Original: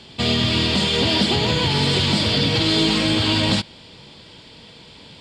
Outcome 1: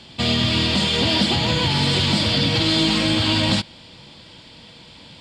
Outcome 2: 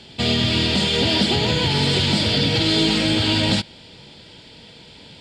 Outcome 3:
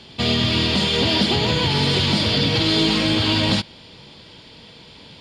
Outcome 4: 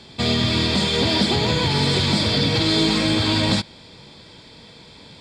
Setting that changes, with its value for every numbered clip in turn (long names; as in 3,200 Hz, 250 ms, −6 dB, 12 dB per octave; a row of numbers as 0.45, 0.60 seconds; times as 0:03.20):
notch filter, centre frequency: 420, 1,100, 7,900, 2,900 Hertz